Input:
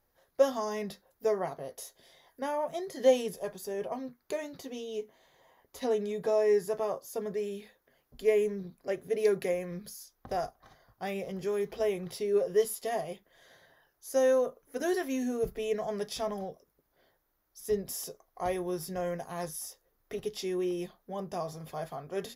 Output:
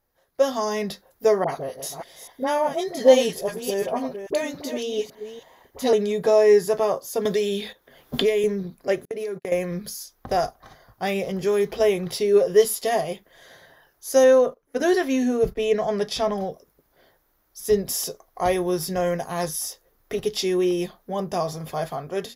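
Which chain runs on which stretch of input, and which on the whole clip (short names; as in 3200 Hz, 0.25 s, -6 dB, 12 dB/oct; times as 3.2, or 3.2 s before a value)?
1.44–5.93 reverse delay 0.282 s, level -9.5 dB + dispersion highs, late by 47 ms, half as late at 980 Hz
7.25–8.44 bell 3500 Hz +9 dB 0.27 oct + gate -60 dBFS, range -10 dB + three-band squash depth 100%
9.05–9.52 gate -36 dBFS, range -45 dB + compressor 12:1, threshold -36 dBFS + mismatched tape noise reduction encoder only
14.24–16.41 gate -49 dBFS, range -13 dB + high shelf 6300 Hz -9.5 dB
whole clip: dynamic EQ 4200 Hz, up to +4 dB, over -52 dBFS, Q 0.97; AGC gain up to 10 dB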